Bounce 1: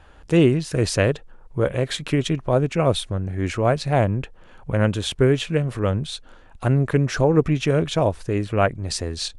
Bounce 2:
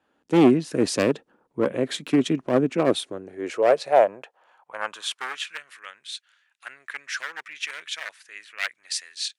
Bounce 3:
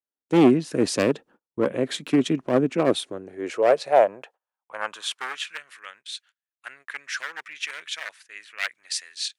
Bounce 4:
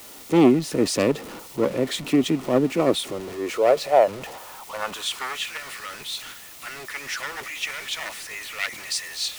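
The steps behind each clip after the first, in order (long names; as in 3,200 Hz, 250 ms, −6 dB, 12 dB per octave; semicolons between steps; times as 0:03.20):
wavefolder on the positive side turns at −15.5 dBFS; high-pass filter sweep 250 Hz → 1,800 Hz, 0:02.64–0:05.77; multiband upward and downward expander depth 40%; level −3.5 dB
noise gate −50 dBFS, range −34 dB
converter with a step at zero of −31.5 dBFS; notch filter 1,600 Hz, Q 7.5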